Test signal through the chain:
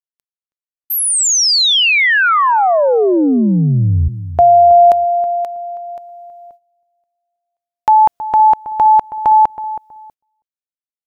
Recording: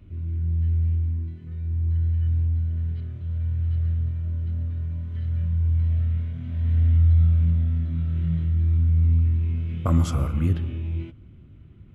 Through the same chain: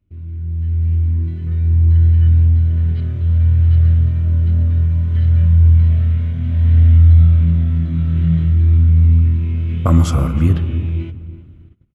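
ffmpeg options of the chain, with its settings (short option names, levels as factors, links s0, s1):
-filter_complex "[0:a]dynaudnorm=f=220:g=9:m=4.73,asplit=2[s0][s1];[s1]adelay=322,lowpass=f=1100:p=1,volume=0.251,asplit=2[s2][s3];[s3]adelay=322,lowpass=f=1100:p=1,volume=0.25,asplit=2[s4][s5];[s5]adelay=322,lowpass=f=1100:p=1,volume=0.25[s6];[s2][s4][s6]amix=inputs=3:normalize=0[s7];[s0][s7]amix=inputs=2:normalize=0,agate=range=0.112:threshold=0.00891:ratio=16:detection=peak"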